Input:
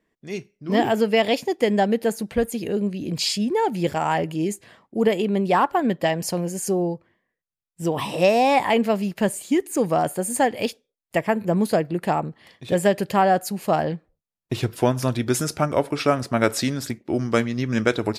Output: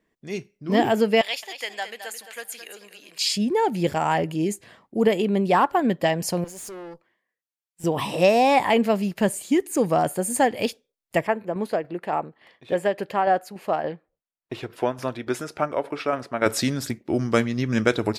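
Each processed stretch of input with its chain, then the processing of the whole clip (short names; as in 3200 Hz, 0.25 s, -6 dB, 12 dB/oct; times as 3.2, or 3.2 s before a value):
1.21–3.31 HPF 1400 Hz + feedback echo 0.217 s, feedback 27%, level -10.5 dB
6.44–7.84 HPF 720 Hz 6 dB/oct + tube stage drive 35 dB, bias 0.5
11.27–16.46 tone controls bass -12 dB, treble -12 dB + tremolo saw down 3.5 Hz, depth 45%
whole clip: dry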